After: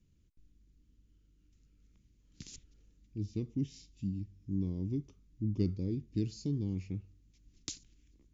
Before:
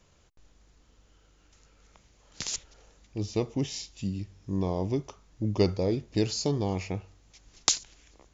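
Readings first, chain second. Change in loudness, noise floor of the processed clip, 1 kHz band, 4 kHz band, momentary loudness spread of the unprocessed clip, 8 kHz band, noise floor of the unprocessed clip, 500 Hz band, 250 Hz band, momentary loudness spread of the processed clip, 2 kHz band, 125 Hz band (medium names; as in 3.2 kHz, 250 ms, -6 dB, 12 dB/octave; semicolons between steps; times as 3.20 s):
-7.0 dB, -69 dBFS, under -25 dB, -18.0 dB, 11 LU, no reading, -63 dBFS, -15.5 dB, -5.0 dB, 17 LU, under -15 dB, -4.0 dB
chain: FFT filter 290 Hz 0 dB, 700 Hz -29 dB, 2.4 kHz -14 dB; trim -4 dB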